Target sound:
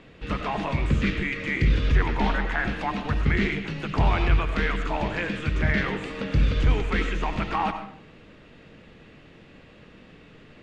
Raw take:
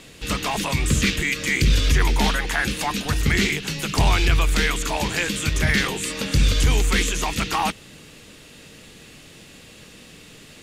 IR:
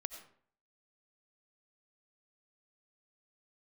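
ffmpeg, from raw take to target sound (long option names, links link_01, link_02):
-filter_complex "[0:a]lowpass=2000[link_01];[1:a]atrim=start_sample=2205[link_02];[link_01][link_02]afir=irnorm=-1:irlink=0"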